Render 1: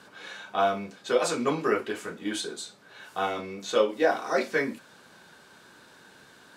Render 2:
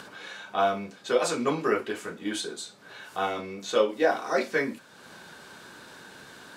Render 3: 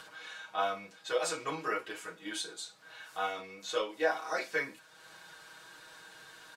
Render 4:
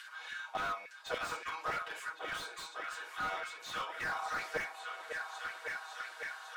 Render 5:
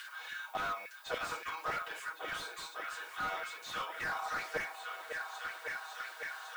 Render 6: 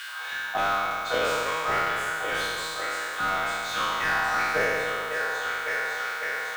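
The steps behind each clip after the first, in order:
upward compressor, threshold -39 dBFS
bell 210 Hz -12 dB 2.3 oct; comb 6.3 ms, depth 90%; gain -6.5 dB
LFO high-pass saw down 3.5 Hz 630–2000 Hz; repeats that get brighter 0.552 s, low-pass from 750 Hz, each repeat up 2 oct, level -6 dB; slew limiter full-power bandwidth 37 Hz; gain -2 dB
reverse; upward compressor, threshold -41 dBFS; reverse; added noise violet -63 dBFS
spectral trails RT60 2.48 s; gain +7 dB

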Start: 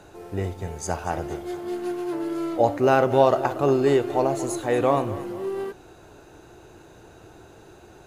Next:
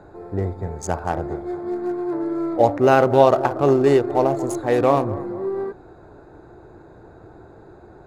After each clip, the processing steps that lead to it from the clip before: Wiener smoothing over 15 samples; gain +4 dB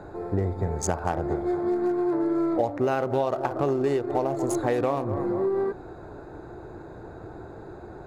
compressor 8:1, threshold -25 dBFS, peak gain reduction 17 dB; gain +3.5 dB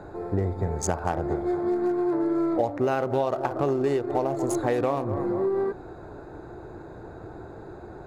nothing audible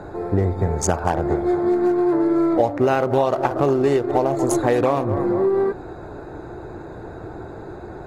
gain +6.5 dB; AAC 48 kbps 48000 Hz

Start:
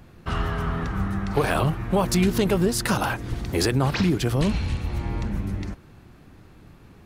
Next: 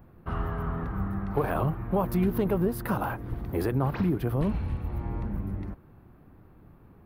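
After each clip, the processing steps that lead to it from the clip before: EQ curve 1100 Hz 0 dB, 7300 Hz -24 dB, 14000 Hz +3 dB; gain -4.5 dB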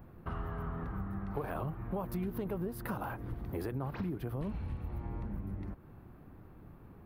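compressor 2.5:1, threshold -39 dBFS, peak gain reduction 12 dB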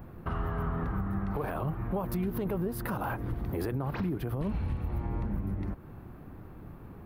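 limiter -30.5 dBFS, peak gain reduction 8 dB; gain +7 dB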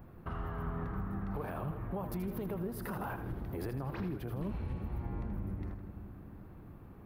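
split-band echo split 550 Hz, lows 0.356 s, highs 80 ms, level -9 dB; gain -6.5 dB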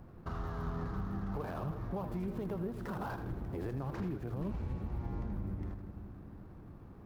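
median filter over 15 samples

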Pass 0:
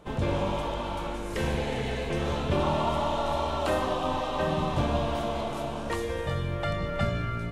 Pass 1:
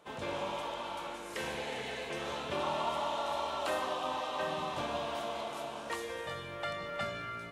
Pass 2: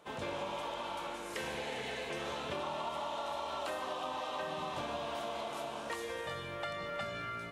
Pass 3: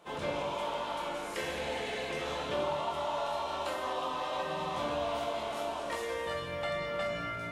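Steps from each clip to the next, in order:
HPF 780 Hz 6 dB/oct; gain -3 dB
compressor, threshold -36 dBFS, peak gain reduction 7 dB; gain +1 dB
shoebox room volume 110 m³, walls mixed, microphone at 0.88 m

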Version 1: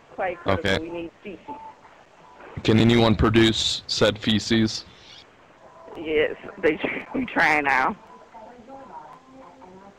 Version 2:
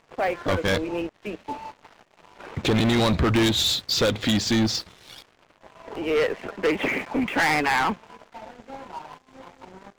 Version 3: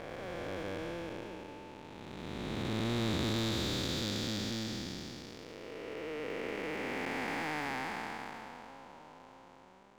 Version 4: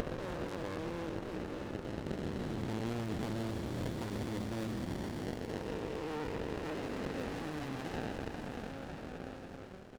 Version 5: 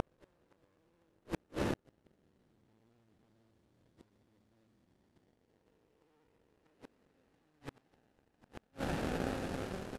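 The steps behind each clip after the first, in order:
sample leveller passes 3; gain -7.5 dB
time blur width 1.06 s; gain -7.5 dB
compressor 6:1, threshold -44 dBFS, peak gain reduction 13.5 dB; echo 0.879 s -12.5 dB; running maximum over 33 samples; gain +9.5 dB
CVSD 64 kbps; vibrato 15 Hz 45 cents; flipped gate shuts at -31 dBFS, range -42 dB; gain +8.5 dB

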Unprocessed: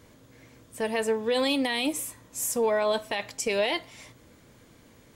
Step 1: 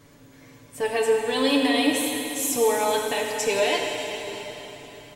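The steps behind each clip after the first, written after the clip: comb 7 ms, depth 75%; plate-style reverb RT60 3.9 s, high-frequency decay 1×, DRR 0 dB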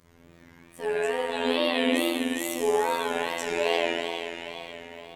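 spring tank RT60 1.5 s, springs 48 ms, chirp 75 ms, DRR -7.5 dB; wow and flutter 140 cents; robotiser 84.8 Hz; gain -7.5 dB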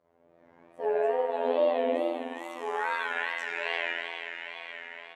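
low shelf 65 Hz +7.5 dB; AGC gain up to 9.5 dB; band-pass sweep 640 Hz -> 1700 Hz, 2.09–2.96; gain -1 dB

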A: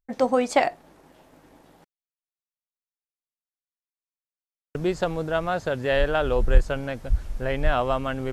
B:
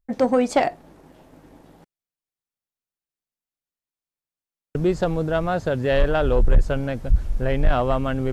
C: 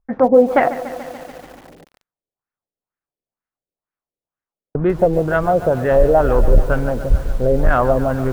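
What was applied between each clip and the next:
low shelf 460 Hz +8 dB; soft clip -8.5 dBFS, distortion -9 dB
LFO low-pass sine 2.1 Hz 480–1700 Hz; lo-fi delay 0.144 s, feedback 80%, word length 6-bit, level -14 dB; gain +3 dB

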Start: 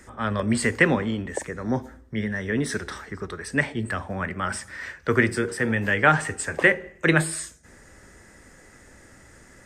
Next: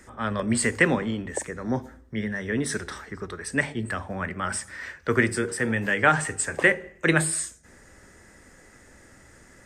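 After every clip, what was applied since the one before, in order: notches 50/100/150 Hz; dynamic EQ 8400 Hz, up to +6 dB, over -46 dBFS, Q 1.4; gain -1.5 dB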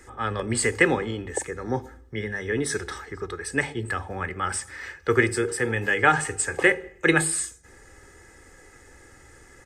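comb 2.4 ms, depth 57%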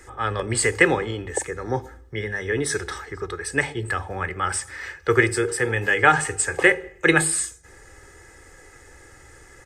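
bell 230 Hz -8 dB 0.5 oct; gain +3 dB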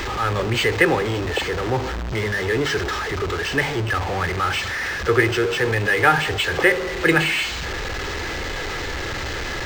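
zero-crossing step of -20 dBFS; decimation joined by straight lines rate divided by 4×; gain -1 dB

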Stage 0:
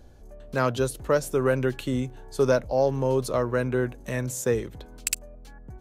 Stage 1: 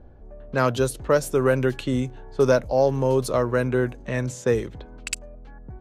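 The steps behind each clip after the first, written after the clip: low-pass opened by the level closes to 1300 Hz, open at -21.5 dBFS; gain +3 dB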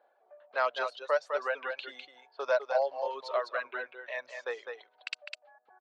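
elliptic band-pass 620–4300 Hz, stop band 80 dB; echo 0.204 s -4 dB; reverb removal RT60 1.5 s; gain -4.5 dB

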